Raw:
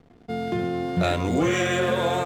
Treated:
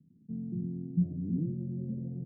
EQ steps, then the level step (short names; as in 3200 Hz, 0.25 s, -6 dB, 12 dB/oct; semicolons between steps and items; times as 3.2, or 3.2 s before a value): HPF 140 Hz 24 dB/oct; inverse Chebyshev low-pass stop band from 1200 Hz, stop band 80 dB; 0.0 dB